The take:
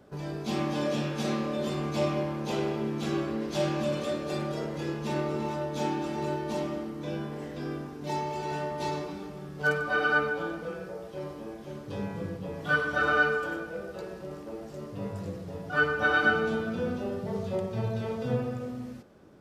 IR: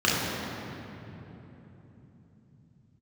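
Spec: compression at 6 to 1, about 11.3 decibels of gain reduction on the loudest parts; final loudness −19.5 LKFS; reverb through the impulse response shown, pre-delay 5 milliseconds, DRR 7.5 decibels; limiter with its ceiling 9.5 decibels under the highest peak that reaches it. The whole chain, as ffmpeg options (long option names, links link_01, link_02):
-filter_complex "[0:a]acompressor=threshold=-32dB:ratio=6,alimiter=level_in=7.5dB:limit=-24dB:level=0:latency=1,volume=-7.5dB,asplit=2[link_01][link_02];[1:a]atrim=start_sample=2205,adelay=5[link_03];[link_02][link_03]afir=irnorm=-1:irlink=0,volume=-25dB[link_04];[link_01][link_04]amix=inputs=2:normalize=0,volume=18.5dB"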